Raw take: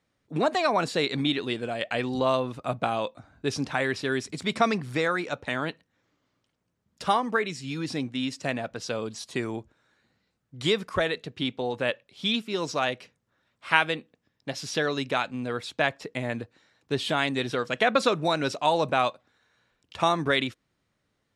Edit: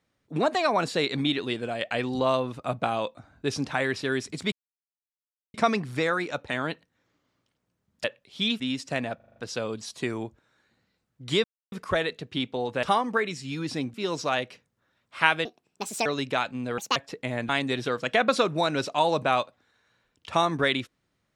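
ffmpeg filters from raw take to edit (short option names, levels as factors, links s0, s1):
-filter_complex "[0:a]asplit=17[s0][s1][s2][s3][s4][s5][s6][s7][s8][s9][s10][s11][s12][s13][s14][s15][s16];[s0]atrim=end=4.52,asetpts=PTS-STARTPTS,afade=t=out:st=4.516:d=0.004:c=hsin,apad=pad_dur=1.02[s17];[s1]atrim=start=4.52:end=7.022,asetpts=PTS-STARTPTS,afade=t=in:d=0.004:c=hsin[s18];[s2]atrim=start=11.878:end=12.442[s19];[s3]atrim=start=8.128:end=8.732[s20];[s4]atrim=start=8.688:end=8.732[s21];[s5]atrim=start=8.688:end=8.732[s22];[s6]atrim=start=8.688:end=8.732[s23];[s7]atrim=start=8.688:end=8.732[s24];[s8]atrim=start=8.688:end=10.77,asetpts=PTS-STARTPTS,afade=t=out:st=2.078:d=0.004:c=hsin,apad=pad_dur=0.28[s25];[s9]atrim=start=10.77:end=11.882,asetpts=PTS-STARTPTS,afade=t=in:d=0.004:c=hsin[s26];[s10]atrim=start=7.018:end=8.132[s27];[s11]atrim=start=12.438:end=13.954[s28];[s12]atrim=start=13.95:end=14.85,asetpts=PTS-STARTPTS,asetrate=65268,aresample=44100[s29];[s13]atrim=start=14.846:end=15.574[s30];[s14]atrim=start=15.57:end=15.88,asetpts=PTS-STARTPTS,asetrate=74970,aresample=44100[s31];[s15]atrim=start=15.876:end=16.412[s32];[s16]atrim=start=17.158[s33];[s17][s18]concat=n=2:v=0:a=1[s34];[s34][s19]acrossfade=d=0.004:c1=hsin:c2=hsin[s35];[s35][s20]acrossfade=d=0.004:c1=hsin:c2=hsin[s36];[s36][s21]acrossfade=d=0.004:c1=hsin:c2=hsin[s37];[s37][s22]acrossfade=d=0.004:c1=hsin:c2=hsin[s38];[s38][s23]acrossfade=d=0.004:c1=hsin:c2=hsin[s39];[s39][s24]acrossfade=d=0.004:c1=hsin:c2=hsin[s40];[s25][s26]concat=n=2:v=0:a=1[s41];[s40][s41]acrossfade=d=0.004:c1=hsin:c2=hsin[s42];[s42][s27]acrossfade=d=0.004:c1=hsin:c2=hsin[s43];[s43][s28]acrossfade=d=0.004:c1=hsin:c2=hsin[s44];[s44][s29]acrossfade=d=0.004:c1=hsin:c2=hsin[s45];[s45][s30]acrossfade=d=0.004:c1=hsin:c2=hsin[s46];[s46][s31]acrossfade=d=0.004:c1=hsin:c2=hsin[s47];[s47][s32]acrossfade=d=0.004:c1=hsin:c2=hsin[s48];[s48][s33]acrossfade=d=0.004:c1=hsin:c2=hsin"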